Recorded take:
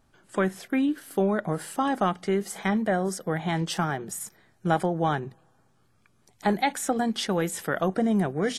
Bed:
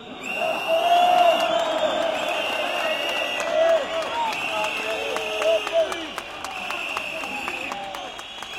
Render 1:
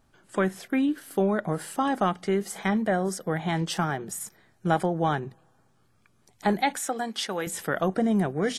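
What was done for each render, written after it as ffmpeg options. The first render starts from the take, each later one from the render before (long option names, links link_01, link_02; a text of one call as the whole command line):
ffmpeg -i in.wav -filter_complex "[0:a]asettb=1/sr,asplit=3[link_01][link_02][link_03];[link_01]atrim=end=6.794[link_04];[link_02]atrim=start=6.79:end=7.47,asetpts=PTS-STARTPTS,afade=type=in:duration=0.004:curve=qsin,afade=type=out:start_time=0.676:duration=0.004:curve=qsin,highpass=frequency=610:poles=1[link_05];[link_03]atrim=start=7.466[link_06];[link_04][link_05]acrossfade=duration=0.004:curve1=hsin:curve2=qsin[link_07];[link_07][link_06]acrossfade=duration=0.004:curve1=qsin:curve2=hsin" out.wav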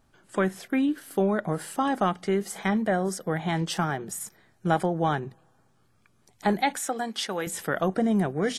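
ffmpeg -i in.wav -af anull out.wav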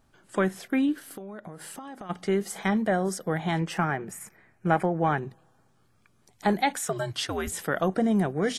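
ffmpeg -i in.wav -filter_complex "[0:a]asplit=3[link_01][link_02][link_03];[link_01]afade=type=out:start_time=1.13:duration=0.02[link_04];[link_02]acompressor=threshold=-37dB:ratio=8:attack=3.2:release=140:knee=1:detection=peak,afade=type=in:start_time=1.13:duration=0.02,afade=type=out:start_time=2.09:duration=0.02[link_05];[link_03]afade=type=in:start_time=2.09:duration=0.02[link_06];[link_04][link_05][link_06]amix=inputs=3:normalize=0,asettb=1/sr,asplit=3[link_07][link_08][link_09];[link_07]atrim=end=3.594[link_10];[link_08]atrim=start=3.59:end=5.18,asetpts=PTS-STARTPTS,afade=type=in:duration=0.004:curve=qsin,afade=type=out:start_time=1.586:duration=0.004:curve=qsin,highshelf=frequency=2900:width_type=q:width=3:gain=-6[link_11];[link_09]atrim=start=5.176[link_12];[link_10][link_11]acrossfade=duration=0.004:curve1=hsin:curve2=qsin[link_13];[link_13][link_12]acrossfade=duration=0.004:curve1=qsin:curve2=hsin,asettb=1/sr,asplit=3[link_14][link_15][link_16];[link_14]atrim=end=6.854[link_17];[link_15]atrim=start=6.85:end=7.52,asetpts=PTS-STARTPTS,afade=type=in:duration=0.004:curve=qsin,afade=type=out:start_time=0.666:duration=0.004:curve=qsin,afreqshift=-100[link_18];[link_16]atrim=start=7.516[link_19];[link_17][link_18]acrossfade=duration=0.004:curve1=hsin:curve2=qsin[link_20];[link_20][link_19]acrossfade=duration=0.004:curve1=qsin:curve2=hsin" out.wav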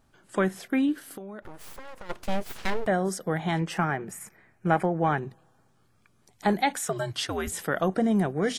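ffmpeg -i in.wav -filter_complex "[0:a]asettb=1/sr,asplit=3[link_01][link_02][link_03];[link_01]atrim=end=1.424[link_04];[link_02]atrim=start=1.42:end=2.87,asetpts=PTS-STARTPTS,afade=type=in:duration=0.004:curve=qsin,afade=type=out:start_time=1.446:duration=0.004:curve=qsin,aeval=exprs='abs(val(0))':channel_layout=same[link_05];[link_03]atrim=start=2.866[link_06];[link_04][link_05]acrossfade=duration=0.004:curve1=hsin:curve2=qsin[link_07];[link_07][link_06]acrossfade=duration=0.004:curve1=qsin:curve2=hsin" out.wav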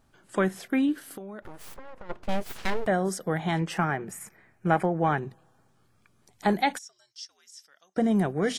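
ffmpeg -i in.wav -filter_complex "[0:a]asettb=1/sr,asplit=3[link_01][link_02][link_03];[link_01]atrim=end=1.744[link_04];[link_02]atrim=start=1.74:end=2.29,asetpts=PTS-STARTPTS,afade=type=in:duration=0.004:curve=qsin,afade=type=out:start_time=0.546:duration=0.004:curve=qsin,lowpass=frequency=1300:poles=1[link_05];[link_03]atrim=start=2.286[link_06];[link_04][link_05]acrossfade=duration=0.004:curve1=hsin:curve2=qsin[link_07];[link_07][link_06]acrossfade=duration=0.004:curve1=qsin:curve2=hsin,asplit=3[link_08][link_09][link_10];[link_08]afade=type=out:start_time=6.77:duration=0.02[link_11];[link_09]bandpass=frequency=5500:width_type=q:width=8.7,afade=type=in:start_time=6.77:duration=0.02,afade=type=out:start_time=7.96:duration=0.02[link_12];[link_10]afade=type=in:start_time=7.96:duration=0.02[link_13];[link_11][link_12][link_13]amix=inputs=3:normalize=0" out.wav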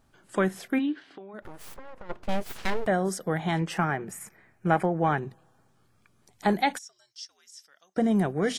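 ffmpeg -i in.wav -filter_complex "[0:a]asplit=3[link_01][link_02][link_03];[link_01]afade=type=out:start_time=0.78:duration=0.02[link_04];[link_02]highpass=200,equalizer=frequency=220:width_type=q:width=4:gain=-9,equalizer=frequency=520:width_type=q:width=4:gain=-9,equalizer=frequency=1300:width_type=q:width=4:gain=-5,lowpass=frequency=4100:width=0.5412,lowpass=frequency=4100:width=1.3066,afade=type=in:start_time=0.78:duration=0.02,afade=type=out:start_time=1.33:duration=0.02[link_05];[link_03]afade=type=in:start_time=1.33:duration=0.02[link_06];[link_04][link_05][link_06]amix=inputs=3:normalize=0" out.wav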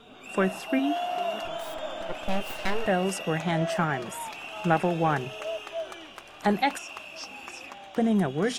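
ffmpeg -i in.wav -i bed.wav -filter_complex "[1:a]volume=-13dB[link_01];[0:a][link_01]amix=inputs=2:normalize=0" out.wav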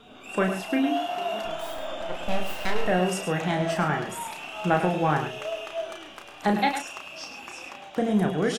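ffmpeg -i in.wav -filter_complex "[0:a]asplit=2[link_01][link_02];[link_02]adelay=33,volume=-5.5dB[link_03];[link_01][link_03]amix=inputs=2:normalize=0,aecho=1:1:105:0.355" out.wav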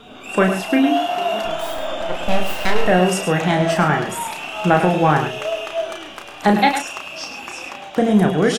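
ffmpeg -i in.wav -af "volume=8.5dB,alimiter=limit=-1dB:level=0:latency=1" out.wav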